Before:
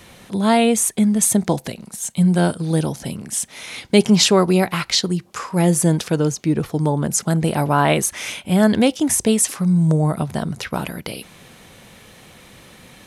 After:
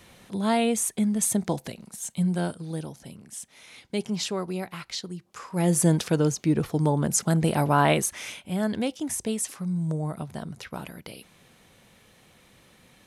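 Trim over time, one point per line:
2.12 s -8 dB
2.94 s -15.5 dB
5.24 s -15.5 dB
5.80 s -4 dB
7.86 s -4 dB
8.52 s -12 dB

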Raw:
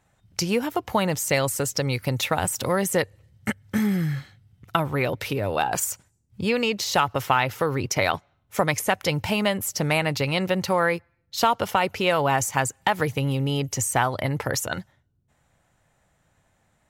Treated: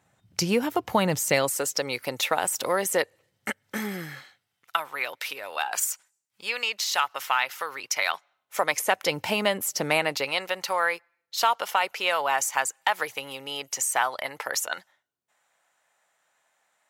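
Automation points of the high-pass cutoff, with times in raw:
1.19 s 110 Hz
1.59 s 390 Hz
4.02 s 390 Hz
4.78 s 1.1 kHz
8.11 s 1.1 kHz
9.21 s 280 Hz
9.96 s 280 Hz
10.45 s 760 Hz

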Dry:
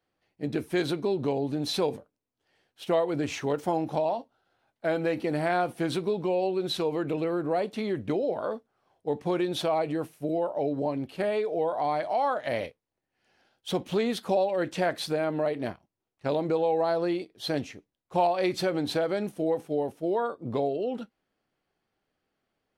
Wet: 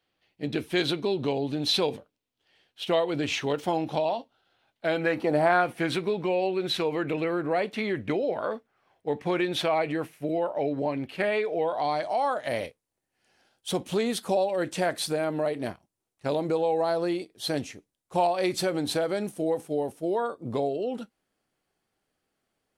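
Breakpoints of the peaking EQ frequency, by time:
peaking EQ +9.5 dB 1.2 oct
4.92 s 3.2 kHz
5.36 s 560 Hz
5.66 s 2.1 kHz
11.60 s 2.1 kHz
12.19 s 9.2 kHz

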